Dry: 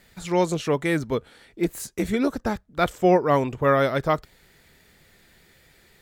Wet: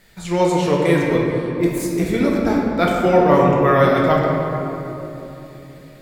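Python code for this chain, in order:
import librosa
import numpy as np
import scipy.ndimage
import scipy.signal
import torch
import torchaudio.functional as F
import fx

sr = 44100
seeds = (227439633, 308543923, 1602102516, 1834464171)

y = fx.room_shoebox(x, sr, seeds[0], volume_m3=160.0, walls='hard', distance_m=0.63)
y = y * librosa.db_to_amplitude(1.5)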